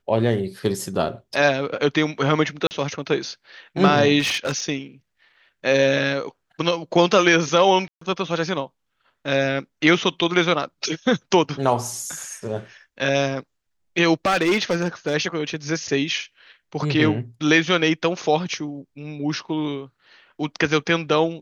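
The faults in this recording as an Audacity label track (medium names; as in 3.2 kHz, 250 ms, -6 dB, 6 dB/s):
2.670000	2.710000	dropout 39 ms
4.190000	4.640000	clipped -18.5 dBFS
7.880000	8.010000	dropout 134 ms
14.260000	15.150000	clipped -14.5 dBFS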